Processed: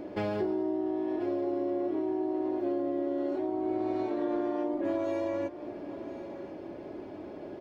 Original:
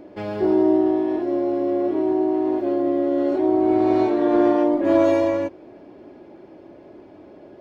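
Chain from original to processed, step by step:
downward compressor 12 to 1, threshold −30 dBFS, peak gain reduction 17.5 dB
single-tap delay 1,037 ms −14 dB
level +2 dB

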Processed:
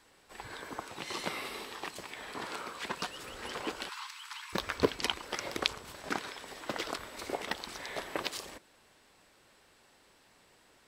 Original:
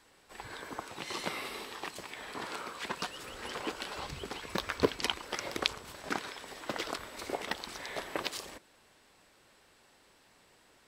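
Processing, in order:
0:03.89–0:04.53: Butterworth high-pass 890 Hz 96 dB per octave

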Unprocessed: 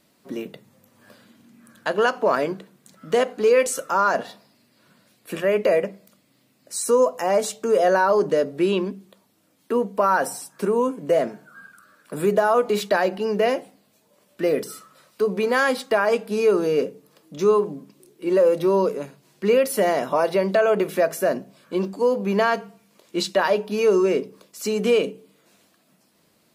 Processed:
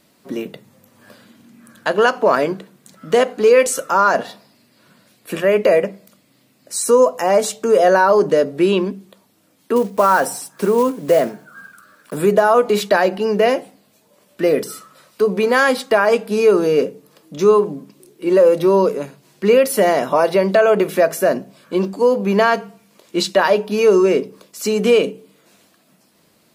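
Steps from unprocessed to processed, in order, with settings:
0:09.76–0:12.19: one scale factor per block 5 bits
level +5.5 dB

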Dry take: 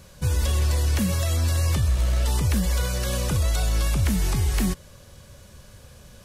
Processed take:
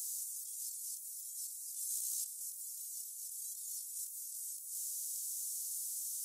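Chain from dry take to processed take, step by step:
inverse Chebyshev high-pass filter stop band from 1,300 Hz, stop band 80 dB
compressor whose output falls as the input rises −52 dBFS, ratio −1
level +8.5 dB

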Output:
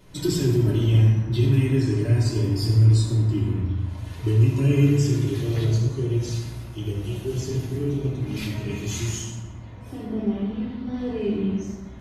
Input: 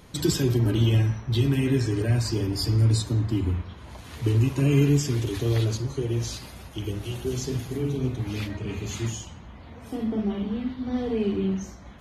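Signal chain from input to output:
0:08.36–0:09.32: high-shelf EQ 3,000 Hz +10 dB
convolution reverb RT60 1.2 s, pre-delay 3 ms, DRR −6.5 dB
level −8.5 dB

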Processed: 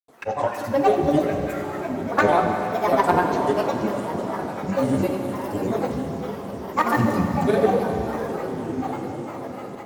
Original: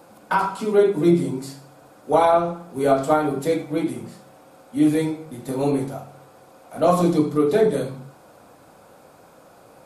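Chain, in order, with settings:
on a send: feedback delay with all-pass diffusion 1,178 ms, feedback 56%, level −8 dB
on the sum: granular cloud, pitch spread up and down by 12 semitones
harmonic generator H 3 −21 dB, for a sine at −6.5 dBFS
four-comb reverb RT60 3.8 s, combs from 31 ms, DRR 4 dB

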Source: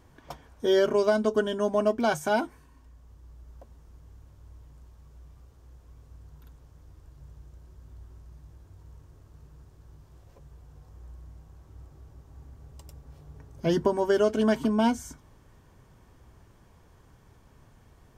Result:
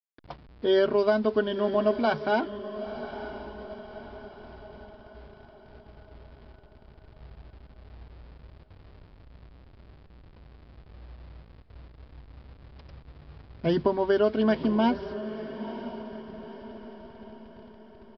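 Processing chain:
hold until the input has moved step −45.5 dBFS
downsampling to 11,025 Hz
feedback delay with all-pass diffusion 956 ms, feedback 49%, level −12 dB

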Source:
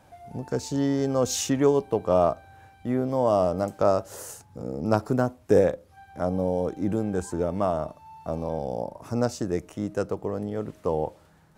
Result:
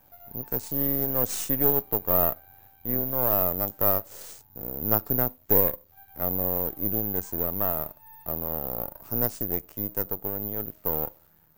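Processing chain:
gain on one half-wave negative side −12 dB
bad sample-rate conversion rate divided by 3×, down none, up zero stuff
level −4.5 dB

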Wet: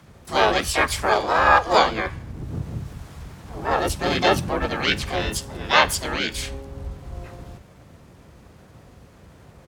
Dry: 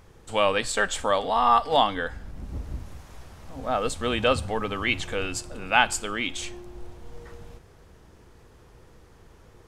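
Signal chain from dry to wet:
frequency shifter +53 Hz
pitch-shifted copies added −7 semitones −2 dB, +5 semitones −1 dB, +12 semitones −13 dB

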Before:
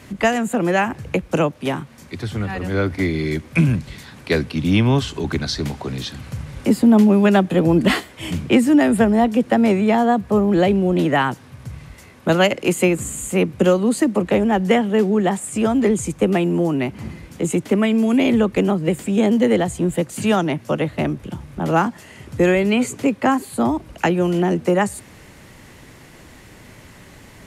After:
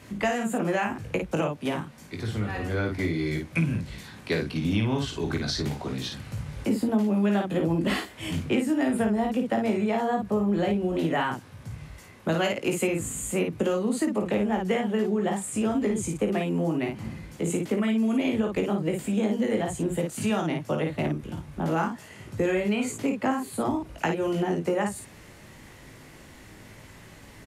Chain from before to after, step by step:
on a send: ambience of single reflections 19 ms −5.5 dB, 54 ms −4.5 dB
on the sum: downward compressor 2.5 to 1, threshold −17 dBFS, peak gain reduction 8.5 dB
level −6.5 dB

